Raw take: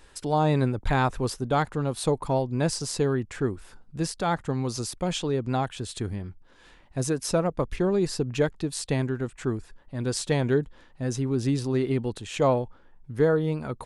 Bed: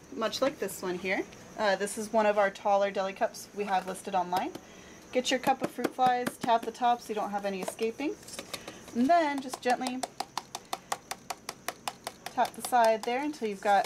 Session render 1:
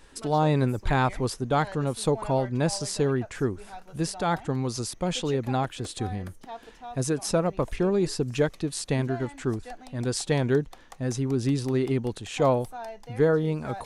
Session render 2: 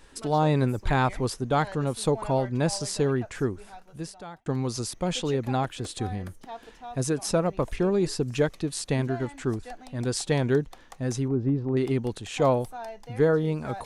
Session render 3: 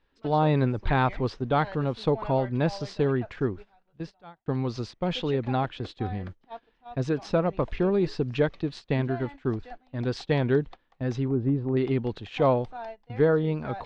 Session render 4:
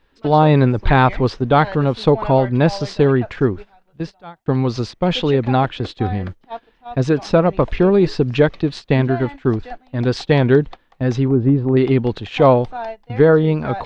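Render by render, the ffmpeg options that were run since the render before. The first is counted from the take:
-filter_complex "[1:a]volume=0.188[s0];[0:a][s0]amix=inputs=2:normalize=0"
-filter_complex "[0:a]asettb=1/sr,asplit=3[s0][s1][s2];[s0]atrim=end=11.284[s3];[s1]atrim=start=11.28:end=11.77,asetpts=PTS-STARTPTS,afade=t=in:d=0.004:c=qsin,afade=t=out:st=0.486:d=0.004:c=qsin,lowpass=1000[s4];[s2]atrim=start=11.766[s5];[s3][s4]acrossfade=d=0.004:c1=hsin:c2=qsin[s6];[s6][s5]acrossfade=d=0.004:c1=qsin:c2=hsin,asplit=2[s7][s8];[s7]atrim=end=4.46,asetpts=PTS-STARTPTS,afade=t=out:st=3.4:d=1.06[s9];[s8]atrim=start=4.46,asetpts=PTS-STARTPTS,afade=t=in:d=0.004:c=hsin[s10];[s9][s10]concat=n=2:v=0:a=1"
-af "lowpass=f=4100:w=0.5412,lowpass=f=4100:w=1.3066,agate=range=0.141:threshold=0.0126:ratio=16:detection=peak"
-af "volume=3.35,alimiter=limit=0.794:level=0:latency=1"

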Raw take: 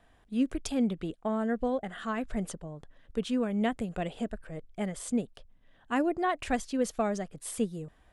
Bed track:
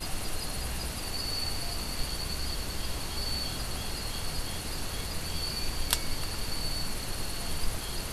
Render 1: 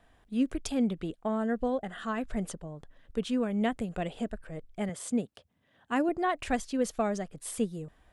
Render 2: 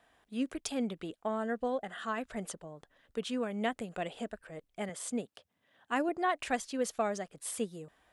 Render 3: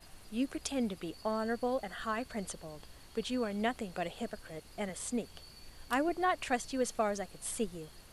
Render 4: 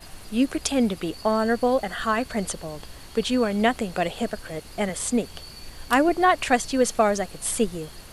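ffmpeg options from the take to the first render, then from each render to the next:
-filter_complex "[0:a]asettb=1/sr,asplit=3[s0][s1][s2];[s0]atrim=end=1.384[s3];[s1]atrim=start=1.38:end=2.21,asetpts=PTS-STARTPTS,afade=t=in:d=0.004:c=qsin,afade=t=out:st=0.826:d=0.004:c=qsin,bandreject=f=2200:w=13[s4];[s2]atrim=start=2.206[s5];[s3][s4]acrossfade=d=0.004:c1=hsin:c2=qsin[s6];[s6][s5]acrossfade=d=0.004:c1=qsin:c2=hsin,asettb=1/sr,asplit=3[s7][s8][s9];[s7]atrim=end=4.894[s10];[s8]atrim=start=4.89:end=6.09,asetpts=PTS-STARTPTS,afade=t=in:d=0.004:c=qsin,afade=t=out:st=1.196:d=0.004:c=qsin,highpass=f=81:w=0.5412,highpass=f=81:w=1.3066[s11];[s9]atrim=start=6.086[s12];[s10][s11]acrossfade=d=0.004:c1=hsin:c2=qsin[s13];[s13][s12]acrossfade=d=0.004:c1=qsin:c2=hsin"
-af "highpass=f=62:p=1,lowshelf=f=260:g=-12"
-filter_complex "[1:a]volume=0.0944[s0];[0:a][s0]amix=inputs=2:normalize=0"
-af "volume=3.98"

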